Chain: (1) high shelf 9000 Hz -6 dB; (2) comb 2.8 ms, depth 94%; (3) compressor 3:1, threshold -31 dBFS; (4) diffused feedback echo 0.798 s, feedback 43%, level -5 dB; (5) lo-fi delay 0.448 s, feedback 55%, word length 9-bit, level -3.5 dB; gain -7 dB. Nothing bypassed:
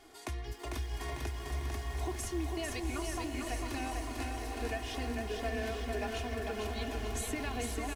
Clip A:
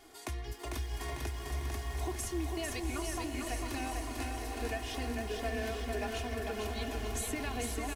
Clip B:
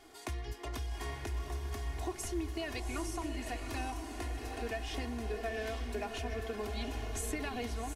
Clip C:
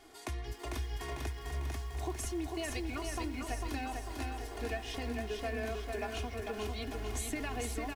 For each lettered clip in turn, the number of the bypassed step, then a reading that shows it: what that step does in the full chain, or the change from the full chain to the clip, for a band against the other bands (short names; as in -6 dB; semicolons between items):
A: 1, 8 kHz band +2.0 dB; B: 5, loudness change -1.5 LU; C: 4, loudness change -1.0 LU